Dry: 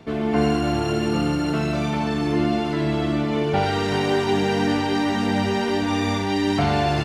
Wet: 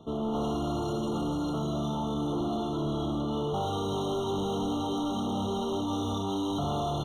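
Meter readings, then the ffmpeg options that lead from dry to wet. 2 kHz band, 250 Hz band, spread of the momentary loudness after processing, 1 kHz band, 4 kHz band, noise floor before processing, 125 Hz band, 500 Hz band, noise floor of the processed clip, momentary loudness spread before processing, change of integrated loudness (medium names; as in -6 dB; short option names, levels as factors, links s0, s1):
under -25 dB, -8.5 dB, 1 LU, -8.5 dB, -9.0 dB, -24 dBFS, -9.0 dB, -8.5 dB, -31 dBFS, 3 LU, -9.0 dB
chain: -af "volume=13.3,asoftclip=hard,volume=0.075,afftfilt=real='re*eq(mod(floor(b*sr/1024/1400),2),0)':imag='im*eq(mod(floor(b*sr/1024/1400),2),0)':win_size=1024:overlap=0.75,volume=0.562"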